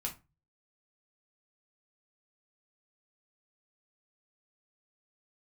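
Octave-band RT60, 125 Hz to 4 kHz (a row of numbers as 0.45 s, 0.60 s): 0.55 s, 0.35 s, 0.25 s, 0.25 s, 0.25 s, 0.20 s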